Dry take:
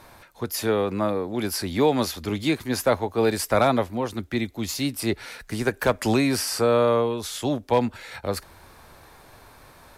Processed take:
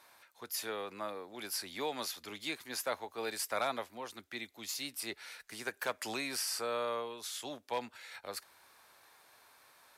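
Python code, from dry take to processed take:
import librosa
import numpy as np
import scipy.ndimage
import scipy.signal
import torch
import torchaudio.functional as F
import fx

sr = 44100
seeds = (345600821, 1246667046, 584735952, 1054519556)

y = fx.highpass(x, sr, hz=1400.0, slope=6)
y = y * librosa.db_to_amplitude(-8.0)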